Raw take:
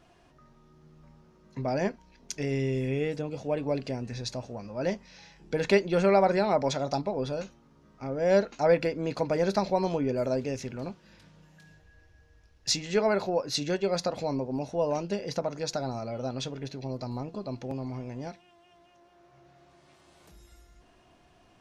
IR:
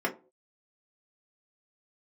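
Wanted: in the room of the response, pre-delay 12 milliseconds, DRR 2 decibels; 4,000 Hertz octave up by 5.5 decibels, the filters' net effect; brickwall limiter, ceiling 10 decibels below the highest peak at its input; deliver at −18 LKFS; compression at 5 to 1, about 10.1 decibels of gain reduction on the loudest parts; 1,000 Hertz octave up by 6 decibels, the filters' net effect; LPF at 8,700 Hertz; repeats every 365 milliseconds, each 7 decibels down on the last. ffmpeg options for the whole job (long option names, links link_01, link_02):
-filter_complex "[0:a]lowpass=8700,equalizer=frequency=1000:width_type=o:gain=8,equalizer=frequency=4000:width_type=o:gain=6.5,acompressor=threshold=-26dB:ratio=5,alimiter=limit=-22dB:level=0:latency=1,aecho=1:1:365|730|1095|1460|1825:0.447|0.201|0.0905|0.0407|0.0183,asplit=2[link_01][link_02];[1:a]atrim=start_sample=2205,adelay=12[link_03];[link_02][link_03]afir=irnorm=-1:irlink=0,volume=-11.5dB[link_04];[link_01][link_04]amix=inputs=2:normalize=0,volume=12dB"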